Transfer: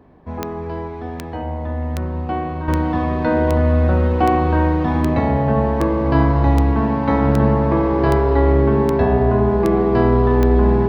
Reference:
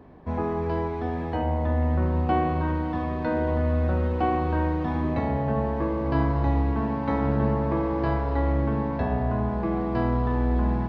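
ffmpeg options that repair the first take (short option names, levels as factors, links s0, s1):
-af "adeclick=t=4,bandreject=f=400:w=30,asetnsamples=n=441:p=0,asendcmd='2.68 volume volume -8.5dB',volume=1"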